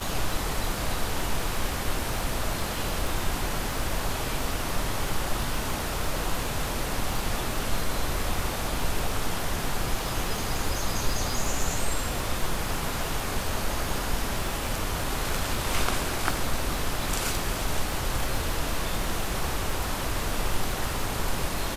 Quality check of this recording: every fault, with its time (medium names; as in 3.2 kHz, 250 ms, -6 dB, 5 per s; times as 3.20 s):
crackle 37 per s -30 dBFS